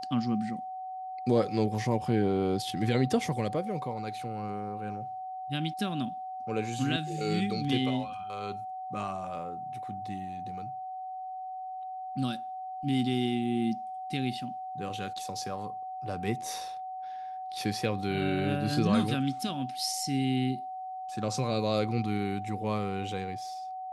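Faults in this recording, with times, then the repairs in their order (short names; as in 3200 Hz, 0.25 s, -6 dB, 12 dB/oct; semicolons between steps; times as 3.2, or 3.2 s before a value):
tone 750 Hz -36 dBFS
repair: notch 750 Hz, Q 30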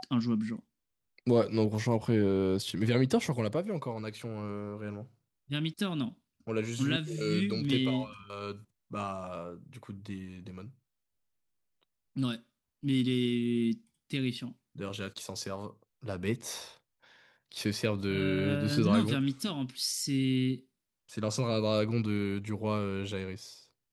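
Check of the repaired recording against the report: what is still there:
none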